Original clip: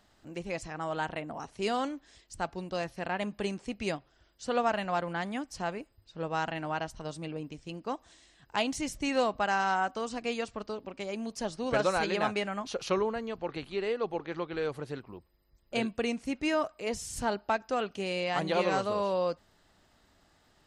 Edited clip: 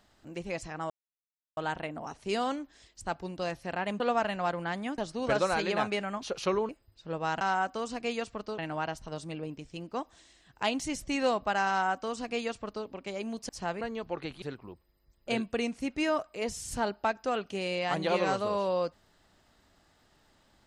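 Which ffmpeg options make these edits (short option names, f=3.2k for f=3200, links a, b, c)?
-filter_complex "[0:a]asplit=10[a][b][c][d][e][f][g][h][i][j];[a]atrim=end=0.9,asetpts=PTS-STARTPTS,afade=t=out:st=0.896:d=0.004:c=hsin,apad=pad_dur=0.67[k];[b]atrim=start=0.9:end=3.332,asetpts=PTS-STARTPTS,afade=t=in:d=0.004:c=hsin[l];[c]atrim=start=4.488:end=5.472[m];[d]atrim=start=11.418:end=13.132[n];[e]atrim=start=5.788:end=6.512[o];[f]atrim=start=9.618:end=10.792[p];[g]atrim=start=6.508:end=11.422[q];[h]atrim=start=5.468:end=5.792[r];[i]atrim=start=13.128:end=13.742[s];[j]atrim=start=14.868[t];[k][l]concat=n=2:v=0:a=1[u];[u][m]acrossfade=d=0.004:c1=hsin:c2=hsin[v];[v][n]acrossfade=d=0.004:c1=hsin:c2=hsin[w];[w][o]acrossfade=d=0.004:c1=hsin:c2=hsin[x];[x][p]acrossfade=d=0.004:c1=hsin:c2=hsin[y];[y][q]acrossfade=d=0.004:c1=hsin:c2=hsin[z];[z][r]acrossfade=d=0.004:c1=hsin:c2=hsin[aa];[aa][s]acrossfade=d=0.004:c1=hsin:c2=hsin[ab];[ab][t]acrossfade=d=0.004:c1=hsin:c2=hsin"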